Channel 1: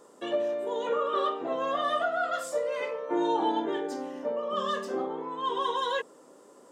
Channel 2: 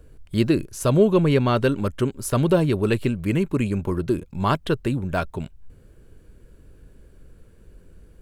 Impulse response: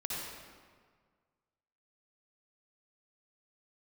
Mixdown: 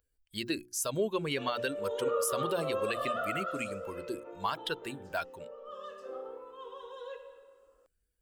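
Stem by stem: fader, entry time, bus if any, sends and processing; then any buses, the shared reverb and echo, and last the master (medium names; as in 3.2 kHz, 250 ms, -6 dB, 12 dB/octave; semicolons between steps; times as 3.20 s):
3.23 s -5.5 dB -> 3.87 s -16 dB, 1.15 s, send -14.5 dB, small resonant body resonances 510/1300/2600 Hz, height 16 dB, ringing for 40 ms; auto duck -8 dB, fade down 0.55 s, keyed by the second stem
-3.0 dB, 0.00 s, no send, expander on every frequency bin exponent 1.5; tilt EQ +2.5 dB/octave; hum notches 60/120/180/240/300/360 Hz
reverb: on, RT60 1.7 s, pre-delay 52 ms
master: bass shelf 250 Hz -11.5 dB; peak limiter -21 dBFS, peak gain reduction 8.5 dB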